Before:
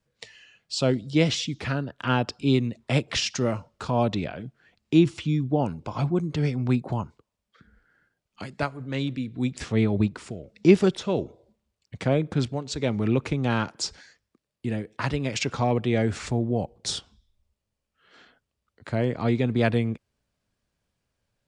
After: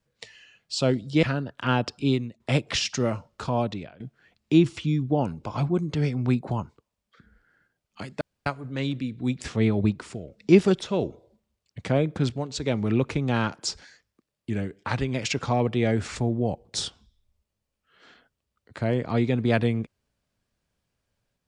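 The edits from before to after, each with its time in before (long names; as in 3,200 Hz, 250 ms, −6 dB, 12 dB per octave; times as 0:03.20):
0:01.23–0:01.64: remove
0:02.43–0:02.81: fade out, to −14.5 dB
0:03.86–0:04.41: fade out, to −19 dB
0:08.62: splice in room tone 0.25 s
0:14.66–0:15.25: play speed 92%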